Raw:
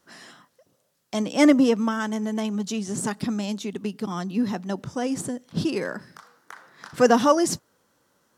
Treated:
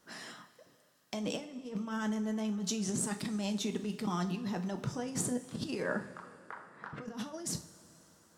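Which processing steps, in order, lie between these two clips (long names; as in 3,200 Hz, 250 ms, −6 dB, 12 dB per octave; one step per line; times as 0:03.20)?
0:05.82–0:07.28: low-pass that shuts in the quiet parts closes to 1,400 Hz, open at −14 dBFS
compressor whose output falls as the input rises −31 dBFS, ratio −1
coupled-rooms reverb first 0.34 s, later 3.3 s, from −18 dB, DRR 6 dB
level −7.5 dB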